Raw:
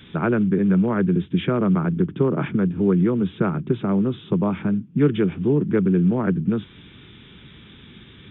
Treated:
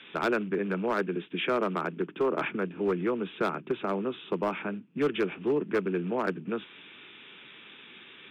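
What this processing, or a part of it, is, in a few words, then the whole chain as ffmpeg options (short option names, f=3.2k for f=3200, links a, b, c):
megaphone: -filter_complex "[0:a]asettb=1/sr,asplit=3[a][b][c];[a]atrim=end=0.904[d];[b]atrim=start=0.9:end=2.41,asetpts=PTS-STARTPTS,afade=t=in:d=0.004:c=qsin,afade=t=out:st=1.506:d=0.004:c=qsin,highpass=140[e];[c]atrim=start=2.406[f];[d][e]acrossfade=d=0.004:c1=hsin:c2=qsin[g];[g][f]acrossfade=d=0.004:c1=qsin:c2=hsin,highpass=480,lowpass=3.4k,equalizer=f=2.6k:t=o:w=0.3:g=7,asoftclip=type=hard:threshold=-20.5dB"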